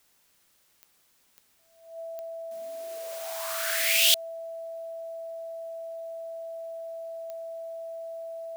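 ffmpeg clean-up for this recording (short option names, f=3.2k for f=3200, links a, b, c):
-af "adeclick=t=4,bandreject=f=660:w=30,agate=range=-21dB:threshold=-58dB"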